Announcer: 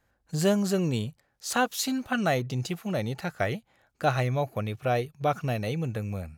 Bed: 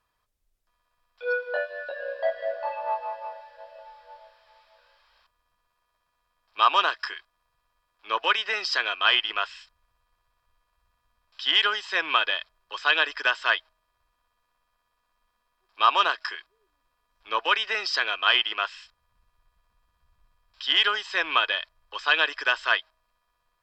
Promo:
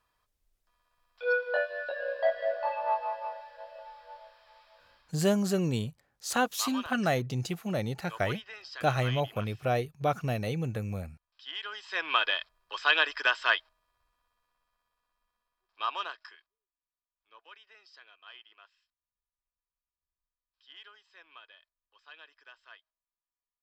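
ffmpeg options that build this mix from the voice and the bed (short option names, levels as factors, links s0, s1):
-filter_complex "[0:a]adelay=4800,volume=0.794[s0];[1:a]volume=5.62,afade=t=out:st=4.93:d=0.26:silence=0.133352,afade=t=in:st=11.64:d=0.64:silence=0.16788,afade=t=out:st=13.86:d=2.81:silence=0.0421697[s1];[s0][s1]amix=inputs=2:normalize=0"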